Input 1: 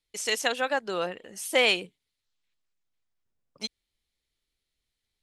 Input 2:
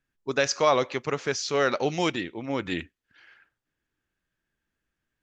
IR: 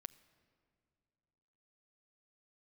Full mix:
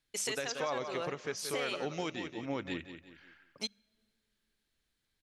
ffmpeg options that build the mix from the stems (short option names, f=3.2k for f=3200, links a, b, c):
-filter_complex "[0:a]bandreject=f=50:t=h:w=6,bandreject=f=100:t=h:w=6,bandreject=f=150:t=h:w=6,bandreject=f=200:t=h:w=6,volume=-2dB,asplit=2[a][b];[b]volume=-5.5dB[c];[1:a]volume=-5.5dB,asplit=3[d][e][f];[e]volume=-11dB[g];[f]apad=whole_len=230456[h];[a][h]sidechaincompress=threshold=-34dB:ratio=8:attack=16:release=641[i];[2:a]atrim=start_sample=2205[j];[c][j]afir=irnorm=-1:irlink=0[k];[g]aecho=0:1:179|358|537|716:1|0.31|0.0961|0.0298[l];[i][d][k][l]amix=inputs=4:normalize=0,alimiter=level_in=0.5dB:limit=-24dB:level=0:latency=1:release=393,volume=-0.5dB"